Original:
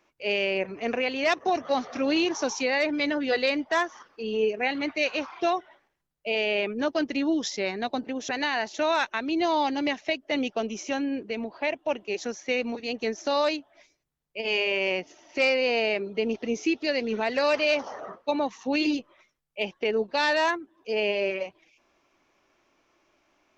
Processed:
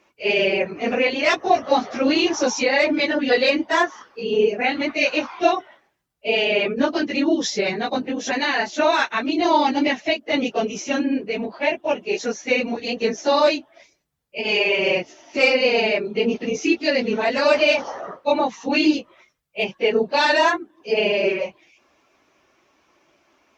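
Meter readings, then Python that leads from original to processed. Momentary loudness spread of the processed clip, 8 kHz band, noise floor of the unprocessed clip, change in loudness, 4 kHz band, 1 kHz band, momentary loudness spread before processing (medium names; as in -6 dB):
7 LU, no reading, -70 dBFS, +6.5 dB, +6.5 dB, +7.0 dB, 8 LU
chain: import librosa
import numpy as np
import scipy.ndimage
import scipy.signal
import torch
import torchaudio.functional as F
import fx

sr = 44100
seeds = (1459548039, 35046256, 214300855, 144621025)

y = fx.phase_scramble(x, sr, seeds[0], window_ms=50)
y = scipy.signal.sosfilt(scipy.signal.butter(2, 54.0, 'highpass', fs=sr, output='sos'), y)
y = y * librosa.db_to_amplitude(6.5)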